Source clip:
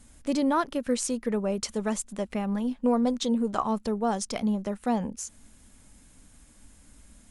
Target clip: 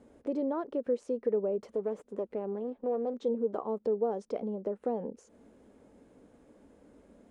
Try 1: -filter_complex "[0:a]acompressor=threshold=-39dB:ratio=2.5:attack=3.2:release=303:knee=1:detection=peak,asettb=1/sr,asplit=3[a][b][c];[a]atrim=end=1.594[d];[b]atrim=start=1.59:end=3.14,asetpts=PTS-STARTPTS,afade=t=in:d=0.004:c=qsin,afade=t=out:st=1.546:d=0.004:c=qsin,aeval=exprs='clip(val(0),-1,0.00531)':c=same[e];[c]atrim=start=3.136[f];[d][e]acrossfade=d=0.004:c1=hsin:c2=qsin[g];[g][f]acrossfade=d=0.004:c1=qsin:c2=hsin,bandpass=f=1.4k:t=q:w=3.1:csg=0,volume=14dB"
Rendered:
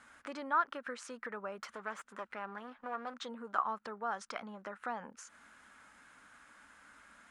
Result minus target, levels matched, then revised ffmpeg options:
1000 Hz band +11.5 dB
-filter_complex "[0:a]acompressor=threshold=-39dB:ratio=2.5:attack=3.2:release=303:knee=1:detection=peak,asettb=1/sr,asplit=3[a][b][c];[a]atrim=end=1.594[d];[b]atrim=start=1.59:end=3.14,asetpts=PTS-STARTPTS,afade=t=in:d=0.004:c=qsin,afade=t=out:st=1.546:d=0.004:c=qsin,aeval=exprs='clip(val(0),-1,0.00531)':c=same[e];[c]atrim=start=3.136[f];[d][e]acrossfade=d=0.004:c1=hsin:c2=qsin[g];[g][f]acrossfade=d=0.004:c1=qsin:c2=hsin,bandpass=f=450:t=q:w=3.1:csg=0,volume=14dB"

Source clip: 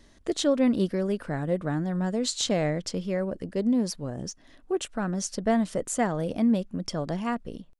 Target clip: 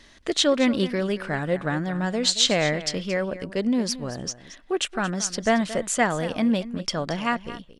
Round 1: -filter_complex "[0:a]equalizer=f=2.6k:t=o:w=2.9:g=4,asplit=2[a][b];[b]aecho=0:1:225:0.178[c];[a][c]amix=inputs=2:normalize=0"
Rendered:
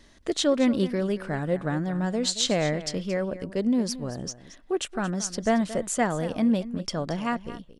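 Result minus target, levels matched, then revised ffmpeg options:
2000 Hz band -4.5 dB
-filter_complex "[0:a]equalizer=f=2.6k:t=o:w=2.9:g=11.5,asplit=2[a][b];[b]aecho=0:1:225:0.178[c];[a][c]amix=inputs=2:normalize=0"

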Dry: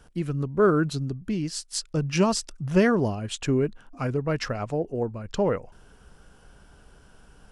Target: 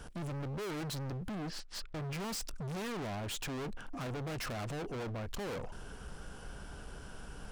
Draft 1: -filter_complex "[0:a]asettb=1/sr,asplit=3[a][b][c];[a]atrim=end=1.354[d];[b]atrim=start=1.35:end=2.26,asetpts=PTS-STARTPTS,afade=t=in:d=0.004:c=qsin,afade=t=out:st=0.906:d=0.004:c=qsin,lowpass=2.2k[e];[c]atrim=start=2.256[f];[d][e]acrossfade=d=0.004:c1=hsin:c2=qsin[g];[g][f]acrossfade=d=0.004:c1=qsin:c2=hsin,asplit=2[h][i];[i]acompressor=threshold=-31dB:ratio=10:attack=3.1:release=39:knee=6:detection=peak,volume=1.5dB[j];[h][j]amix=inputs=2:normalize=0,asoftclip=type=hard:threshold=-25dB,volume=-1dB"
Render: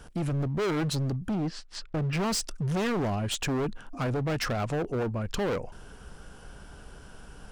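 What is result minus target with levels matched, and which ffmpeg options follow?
hard clip: distortion -5 dB
-filter_complex "[0:a]asettb=1/sr,asplit=3[a][b][c];[a]atrim=end=1.354[d];[b]atrim=start=1.35:end=2.26,asetpts=PTS-STARTPTS,afade=t=in:d=0.004:c=qsin,afade=t=out:st=0.906:d=0.004:c=qsin,lowpass=2.2k[e];[c]atrim=start=2.256[f];[d][e]acrossfade=d=0.004:c1=hsin:c2=qsin[g];[g][f]acrossfade=d=0.004:c1=qsin:c2=hsin,asplit=2[h][i];[i]acompressor=threshold=-31dB:ratio=10:attack=3.1:release=39:knee=6:detection=peak,volume=1.5dB[j];[h][j]amix=inputs=2:normalize=0,asoftclip=type=hard:threshold=-37dB,volume=-1dB"

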